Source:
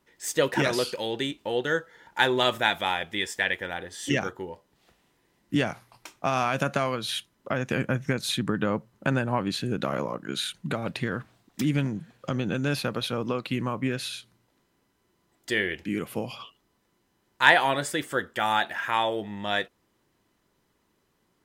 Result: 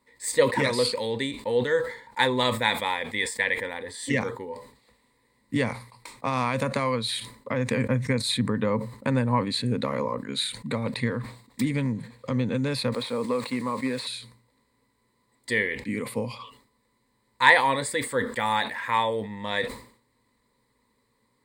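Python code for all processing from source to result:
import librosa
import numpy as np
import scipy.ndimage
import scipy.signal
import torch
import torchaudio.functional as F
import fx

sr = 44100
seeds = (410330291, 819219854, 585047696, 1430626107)

y = fx.chain(x, sr, fx.delta_mod(bps=64000, step_db=-43.5),
    fx.highpass(hz=250.0, slope=12),
    fx.sample_gate(floor_db=-50.5), at=(12.92, 14.07))
y = fx.ripple_eq(y, sr, per_octave=0.97, db=13)
y = fx.sustainer(y, sr, db_per_s=110.0)
y = F.gain(torch.from_numpy(y), -1.5).numpy()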